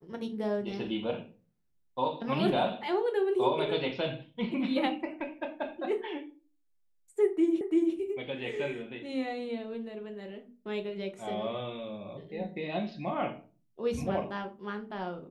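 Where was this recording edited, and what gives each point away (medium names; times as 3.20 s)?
7.61 s: repeat of the last 0.34 s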